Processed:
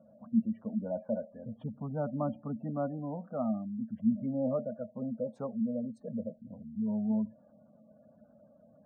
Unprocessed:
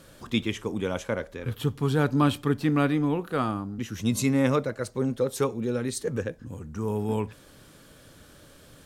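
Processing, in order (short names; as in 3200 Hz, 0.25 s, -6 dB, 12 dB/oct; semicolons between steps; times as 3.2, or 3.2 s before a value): double band-pass 370 Hz, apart 1.5 oct; spectral gate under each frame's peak -25 dB strong; gain +3 dB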